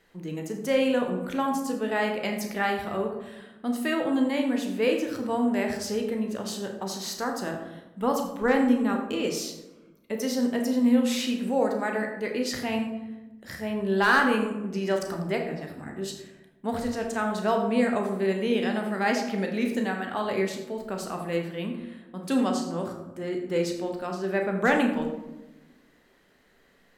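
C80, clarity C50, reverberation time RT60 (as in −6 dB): 8.5 dB, 5.5 dB, 1.1 s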